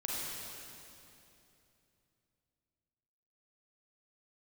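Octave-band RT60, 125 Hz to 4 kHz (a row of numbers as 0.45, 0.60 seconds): 3.9, 3.4, 3.1, 2.7, 2.6, 2.6 seconds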